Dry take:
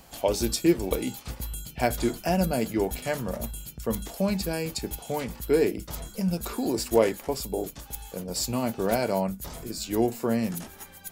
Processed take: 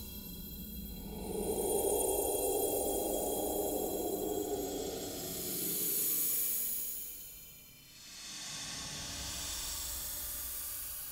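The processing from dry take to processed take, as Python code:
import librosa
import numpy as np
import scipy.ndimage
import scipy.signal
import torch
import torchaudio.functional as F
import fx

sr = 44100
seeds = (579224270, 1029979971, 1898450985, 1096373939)

y = fx.tilt_shelf(x, sr, db=-7.5, hz=1300.0)
y = fx.paulstretch(y, sr, seeds[0], factor=30.0, window_s=0.05, from_s=7.48)
y = y * 10.0 ** (-1.5 / 20.0)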